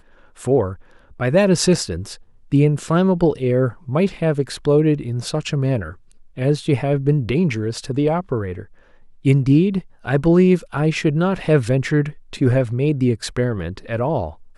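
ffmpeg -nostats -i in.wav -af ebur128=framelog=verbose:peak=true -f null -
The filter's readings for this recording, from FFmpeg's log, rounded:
Integrated loudness:
  I:         -19.1 LUFS
  Threshold: -29.6 LUFS
Loudness range:
  LRA:         3.1 LU
  Threshold: -39.4 LUFS
  LRA low:   -21.0 LUFS
  LRA high:  -17.9 LUFS
True peak:
  Peak:       -4.0 dBFS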